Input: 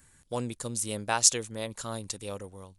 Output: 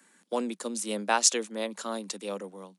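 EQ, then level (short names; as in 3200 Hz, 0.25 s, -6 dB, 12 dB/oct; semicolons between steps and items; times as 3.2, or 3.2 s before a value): steep high-pass 180 Hz 96 dB/oct; high shelf 7700 Hz -11.5 dB; +3.5 dB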